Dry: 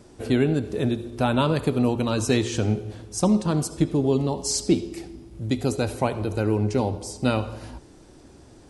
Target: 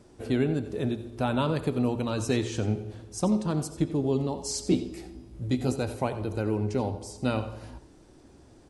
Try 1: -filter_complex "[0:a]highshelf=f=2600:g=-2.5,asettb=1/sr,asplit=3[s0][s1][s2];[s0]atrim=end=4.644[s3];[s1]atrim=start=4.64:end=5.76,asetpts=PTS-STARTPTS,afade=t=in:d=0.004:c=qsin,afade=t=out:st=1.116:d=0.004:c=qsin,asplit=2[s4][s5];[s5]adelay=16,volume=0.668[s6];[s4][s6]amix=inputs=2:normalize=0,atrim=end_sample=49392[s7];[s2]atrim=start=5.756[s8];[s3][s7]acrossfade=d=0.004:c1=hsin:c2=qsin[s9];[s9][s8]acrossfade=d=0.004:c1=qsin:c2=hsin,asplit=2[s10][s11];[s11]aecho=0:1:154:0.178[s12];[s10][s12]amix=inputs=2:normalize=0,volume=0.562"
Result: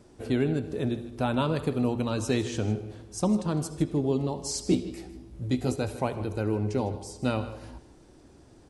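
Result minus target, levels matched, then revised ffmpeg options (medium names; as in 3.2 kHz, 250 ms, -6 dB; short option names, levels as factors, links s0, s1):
echo 65 ms late
-filter_complex "[0:a]highshelf=f=2600:g=-2.5,asettb=1/sr,asplit=3[s0][s1][s2];[s0]atrim=end=4.644[s3];[s1]atrim=start=4.64:end=5.76,asetpts=PTS-STARTPTS,afade=t=in:d=0.004:c=qsin,afade=t=out:st=1.116:d=0.004:c=qsin,asplit=2[s4][s5];[s5]adelay=16,volume=0.668[s6];[s4][s6]amix=inputs=2:normalize=0,atrim=end_sample=49392[s7];[s2]atrim=start=5.756[s8];[s3][s7]acrossfade=d=0.004:c1=hsin:c2=qsin[s9];[s9][s8]acrossfade=d=0.004:c1=qsin:c2=hsin,asplit=2[s10][s11];[s11]aecho=0:1:89:0.178[s12];[s10][s12]amix=inputs=2:normalize=0,volume=0.562"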